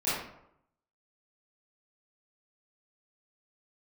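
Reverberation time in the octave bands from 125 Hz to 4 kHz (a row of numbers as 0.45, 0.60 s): 0.85, 0.75, 0.75, 0.75, 0.60, 0.45 s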